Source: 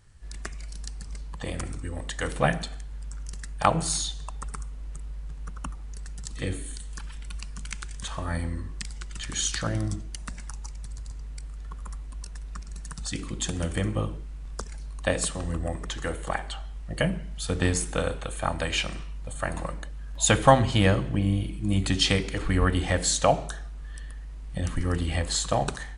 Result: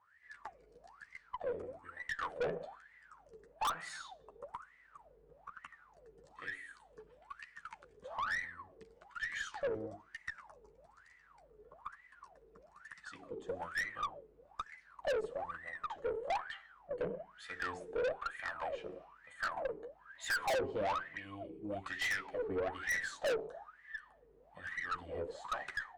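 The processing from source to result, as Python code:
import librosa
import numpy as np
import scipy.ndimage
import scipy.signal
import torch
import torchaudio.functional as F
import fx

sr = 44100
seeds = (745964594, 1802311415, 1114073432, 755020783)

y = fx.chorus_voices(x, sr, voices=6, hz=0.21, base_ms=12, depth_ms=1.8, mix_pct=35)
y = fx.wah_lfo(y, sr, hz=1.1, low_hz=420.0, high_hz=2000.0, q=21.0)
y = fx.tube_stage(y, sr, drive_db=48.0, bias=0.25)
y = y * 10.0 ** (17.0 / 20.0)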